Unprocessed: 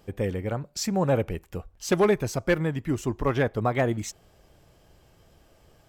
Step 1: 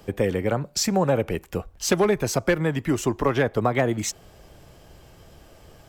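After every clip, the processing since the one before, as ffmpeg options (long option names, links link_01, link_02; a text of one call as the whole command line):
ffmpeg -i in.wav -filter_complex "[0:a]acrossover=split=140|360[link_01][link_02][link_03];[link_01]acompressor=threshold=-44dB:ratio=4[link_04];[link_02]acompressor=threshold=-35dB:ratio=4[link_05];[link_03]acompressor=threshold=-29dB:ratio=4[link_06];[link_04][link_05][link_06]amix=inputs=3:normalize=0,volume=8.5dB" out.wav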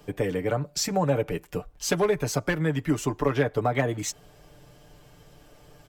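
ffmpeg -i in.wav -af "aecho=1:1:6.8:0.65,volume=-4.5dB" out.wav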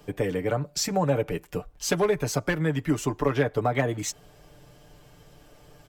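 ffmpeg -i in.wav -af anull out.wav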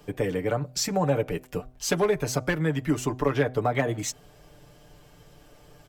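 ffmpeg -i in.wav -af "bandreject=frequency=126.7:width_type=h:width=4,bandreject=frequency=253.4:width_type=h:width=4,bandreject=frequency=380.1:width_type=h:width=4,bandreject=frequency=506.8:width_type=h:width=4,bandreject=frequency=633.5:width_type=h:width=4,bandreject=frequency=760.2:width_type=h:width=4" out.wav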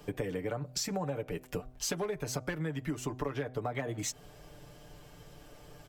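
ffmpeg -i in.wav -af "acompressor=threshold=-32dB:ratio=6" out.wav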